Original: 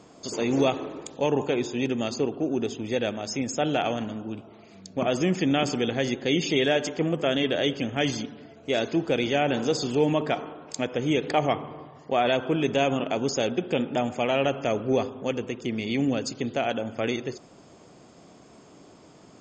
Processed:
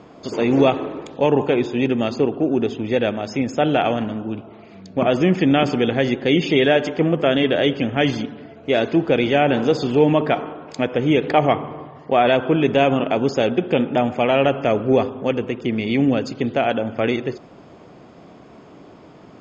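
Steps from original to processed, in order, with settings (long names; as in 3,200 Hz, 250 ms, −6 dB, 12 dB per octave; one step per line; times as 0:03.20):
low-pass filter 3,000 Hz 12 dB per octave
level +7.5 dB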